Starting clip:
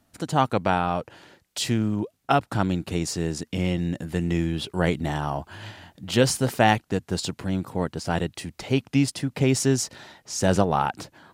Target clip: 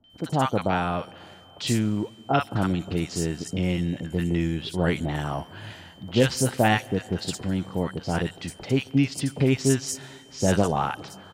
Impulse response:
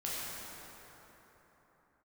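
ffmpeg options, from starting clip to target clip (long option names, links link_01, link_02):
-filter_complex "[0:a]aeval=exprs='val(0)+0.00224*sin(2*PI*3100*n/s)':channel_layout=same,acrossover=split=930|5300[link_01][link_02][link_03];[link_02]adelay=40[link_04];[link_03]adelay=100[link_05];[link_01][link_04][link_05]amix=inputs=3:normalize=0,asplit=2[link_06][link_07];[1:a]atrim=start_sample=2205,asetrate=48510,aresample=44100,adelay=137[link_08];[link_07][link_08]afir=irnorm=-1:irlink=0,volume=-25.5dB[link_09];[link_06][link_09]amix=inputs=2:normalize=0"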